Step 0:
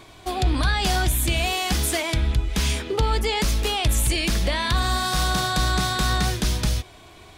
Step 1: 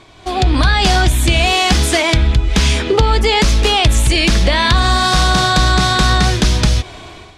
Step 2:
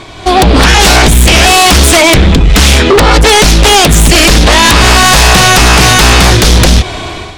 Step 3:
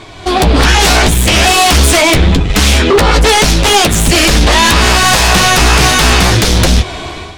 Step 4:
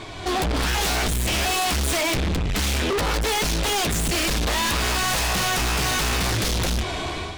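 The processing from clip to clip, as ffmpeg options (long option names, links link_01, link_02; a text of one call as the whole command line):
ffmpeg -i in.wav -af "acompressor=threshold=-24dB:ratio=2.5,lowpass=7200,dynaudnorm=framelen=140:gausssize=5:maxgain=12dB,volume=2.5dB" out.wav
ffmpeg -i in.wav -af "aeval=exprs='0.891*sin(PI/2*3.55*val(0)/0.891)':channel_layout=same" out.wav
ffmpeg -i in.wav -af "flanger=delay=9.3:depth=5:regen=-30:speed=0.78:shape=triangular" out.wav
ffmpeg -i in.wav -af "asoftclip=type=tanh:threshold=-18dB,volume=-3.5dB" out.wav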